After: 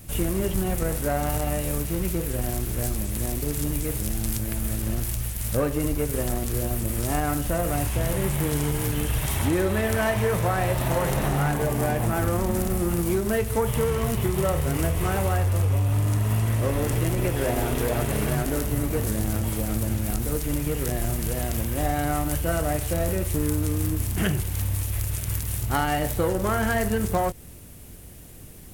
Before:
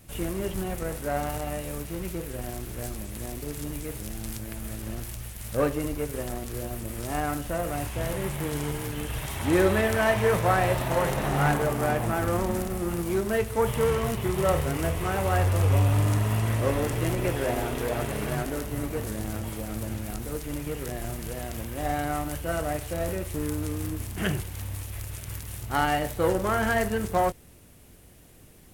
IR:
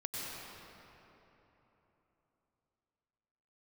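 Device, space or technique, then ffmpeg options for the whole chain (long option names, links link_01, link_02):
ASMR close-microphone chain: -filter_complex "[0:a]lowshelf=frequency=240:gain=6,acompressor=threshold=-24dB:ratio=6,highshelf=frequency=6600:gain=7,asettb=1/sr,asplit=3[link_01][link_02][link_03];[link_01]atrim=end=11.564[link_04];[link_02]atrim=start=11.56:end=12,asetpts=PTS-STARTPTS,afade=type=in:duration=0.004:curve=qsin,afade=type=out:start_time=0.436:duration=0.004:curve=qsin,bandreject=frequency=1300:width=6.4[link_05];[link_03]atrim=start=11.996[link_06];[link_04][link_05]acrossfade=duration=0.004:curve1=hsin:curve2=qsin[link_07];[link_07][link_06]acrossfade=duration=0.004:curve1=qsin:curve2=hsin,volume=4dB"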